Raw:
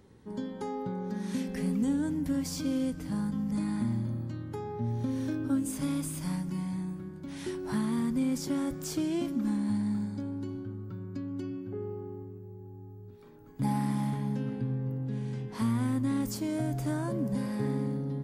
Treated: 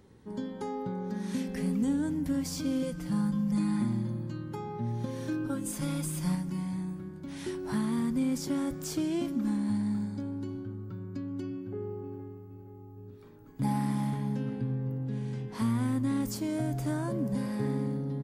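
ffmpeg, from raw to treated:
ffmpeg -i in.wav -filter_complex "[0:a]asettb=1/sr,asplit=3[link_01][link_02][link_03];[link_01]atrim=end=2.824[link_04];[link_02]atrim=start=2.82:end=6.35,asetpts=PTS-STARTPTS,afade=type=in:duration=0.004:curve=qsin,afade=type=out:start_time=3.526:duration=0.004:curve=qsin,aecho=1:1:5.7:0.65,atrim=end_sample=155673[link_05];[link_03]atrim=start=6.346[link_06];[link_04][link_05]acrossfade=duration=0.004:curve1=hsin:curve2=qsin[link_07];[link_07][link_06]acrossfade=duration=0.004:curve1=qsin:curve2=hsin,asplit=2[link_08][link_09];[link_09]afade=type=in:start_time=11.56:duration=0.01,afade=type=out:start_time=12.49:duration=0.01,aecho=0:1:470|940|1410|1880|2350|2820:0.334965|0.167483|0.0837414|0.0418707|0.0209353|0.0104677[link_10];[link_08][link_10]amix=inputs=2:normalize=0" out.wav

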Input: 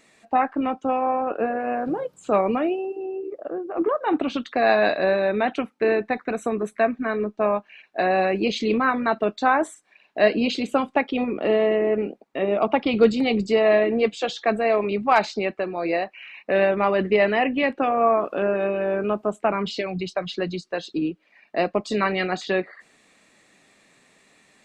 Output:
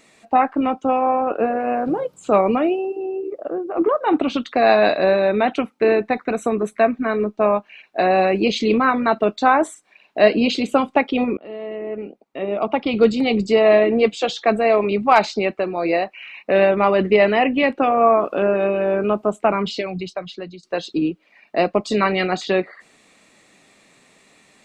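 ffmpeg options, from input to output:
ffmpeg -i in.wav -filter_complex "[0:a]asplit=3[link_01][link_02][link_03];[link_01]atrim=end=11.37,asetpts=PTS-STARTPTS,afade=type=out:start_time=11.366:duration=0.004:curve=hsin:silence=0.0707946[link_04];[link_02]atrim=start=11.37:end=20.63,asetpts=PTS-STARTPTS,afade=type=in:duration=2.34:silence=0.0707946,afade=type=out:start_time=8.16:duration=1.1:silence=0.149624[link_05];[link_03]atrim=start=20.63,asetpts=PTS-STARTPTS,afade=type=in:duration=0.004:curve=hsin:silence=0.149624[link_06];[link_04][link_05][link_06]concat=n=3:v=0:a=1,equalizer=frequency=1700:width_type=o:width=0.23:gain=-5,volume=4.5dB" out.wav

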